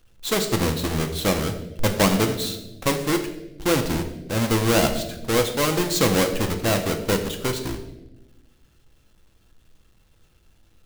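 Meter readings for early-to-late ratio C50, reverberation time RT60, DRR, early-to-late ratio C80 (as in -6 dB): 9.5 dB, 1.1 s, 5.0 dB, 11.0 dB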